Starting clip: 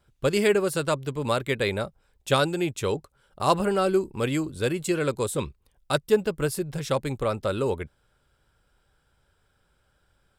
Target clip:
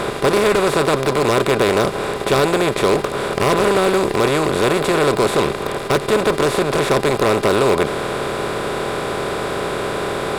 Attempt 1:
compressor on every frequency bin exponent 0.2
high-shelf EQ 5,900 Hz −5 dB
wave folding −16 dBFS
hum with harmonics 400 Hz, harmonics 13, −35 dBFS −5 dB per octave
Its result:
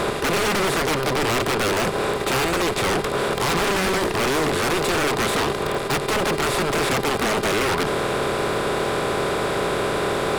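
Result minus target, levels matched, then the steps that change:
wave folding: distortion +18 dB
change: wave folding −7.5 dBFS

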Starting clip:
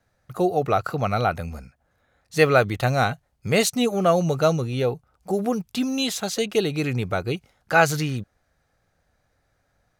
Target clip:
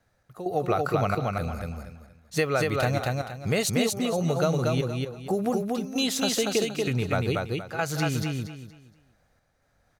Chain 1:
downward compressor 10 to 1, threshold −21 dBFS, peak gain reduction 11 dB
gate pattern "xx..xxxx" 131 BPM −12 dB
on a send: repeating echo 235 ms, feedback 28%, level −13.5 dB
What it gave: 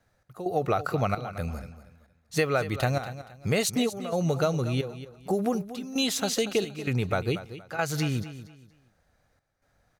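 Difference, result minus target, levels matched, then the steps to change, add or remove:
echo-to-direct −11 dB
change: repeating echo 235 ms, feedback 28%, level −2.5 dB

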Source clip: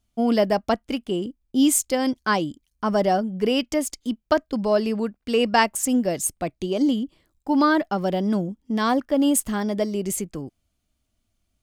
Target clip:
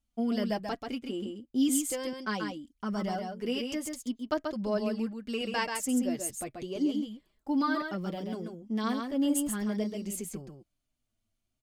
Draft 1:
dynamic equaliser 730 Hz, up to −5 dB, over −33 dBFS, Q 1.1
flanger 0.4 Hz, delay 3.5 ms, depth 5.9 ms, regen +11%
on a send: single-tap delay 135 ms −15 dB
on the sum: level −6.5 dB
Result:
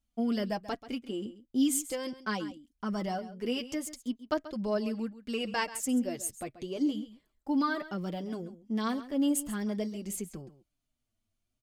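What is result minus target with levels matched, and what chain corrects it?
echo-to-direct −10 dB
dynamic equaliser 730 Hz, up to −5 dB, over −33 dBFS, Q 1.1
flanger 0.4 Hz, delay 3.5 ms, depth 5.9 ms, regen +11%
on a send: single-tap delay 135 ms −5 dB
on the sum: level −6.5 dB

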